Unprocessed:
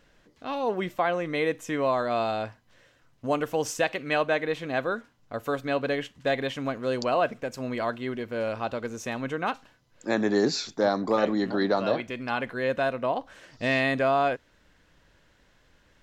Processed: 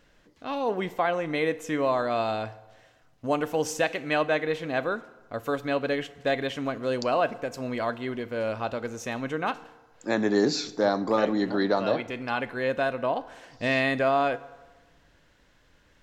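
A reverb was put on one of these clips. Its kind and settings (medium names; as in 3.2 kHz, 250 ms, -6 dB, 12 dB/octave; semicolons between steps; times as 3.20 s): FDN reverb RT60 1.3 s, low-frequency decay 0.8×, high-frequency decay 0.65×, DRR 15 dB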